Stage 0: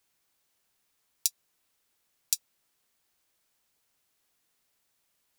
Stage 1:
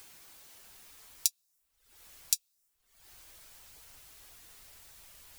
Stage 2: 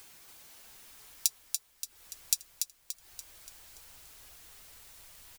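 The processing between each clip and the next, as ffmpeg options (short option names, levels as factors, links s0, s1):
-af "acompressor=mode=upward:threshold=0.0178:ratio=2.5,asubboost=boost=4.5:cutoff=89,afftdn=nr=14:nf=-64"
-af "aecho=1:1:288|576|864|1152|1440|1728:0.531|0.255|0.122|0.0587|0.0282|0.0135"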